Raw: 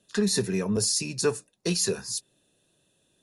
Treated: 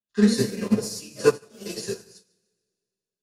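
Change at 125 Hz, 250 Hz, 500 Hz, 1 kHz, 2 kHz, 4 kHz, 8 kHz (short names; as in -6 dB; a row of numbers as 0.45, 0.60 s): +1.0, +5.5, +4.0, +4.5, +1.0, -4.5, -7.5 dB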